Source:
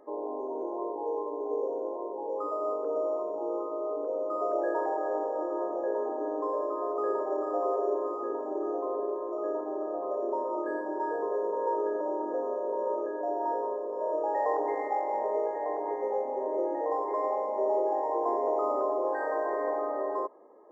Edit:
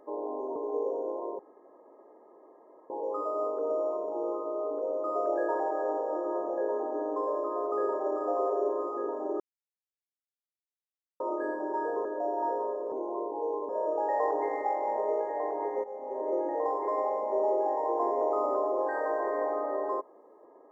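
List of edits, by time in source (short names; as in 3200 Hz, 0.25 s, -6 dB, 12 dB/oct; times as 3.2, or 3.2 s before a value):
0.56–1.33 move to 13.95
2.16 insert room tone 1.51 s
8.66–10.46 mute
11.31–13.08 cut
16.1–16.58 fade in, from -15.5 dB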